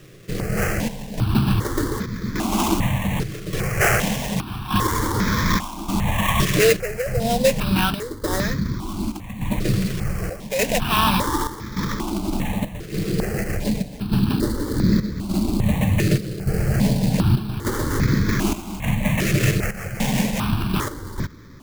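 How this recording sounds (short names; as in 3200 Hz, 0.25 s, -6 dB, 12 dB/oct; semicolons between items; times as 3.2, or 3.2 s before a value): aliases and images of a low sample rate 4500 Hz, jitter 20%; chopped level 0.85 Hz, depth 65%, duty 75%; notches that jump at a steady rate 2.5 Hz 240–2800 Hz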